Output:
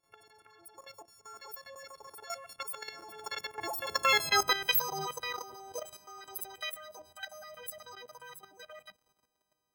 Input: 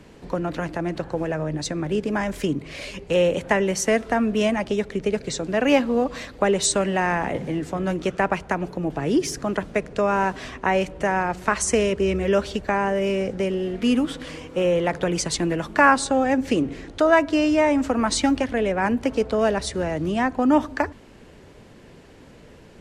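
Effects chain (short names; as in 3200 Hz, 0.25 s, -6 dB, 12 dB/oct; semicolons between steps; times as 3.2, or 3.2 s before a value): frequency quantiser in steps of 4 st; Doppler pass-by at 10.03, 18 m/s, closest 9 m; level quantiser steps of 12 dB; speed mistake 33 rpm record played at 78 rpm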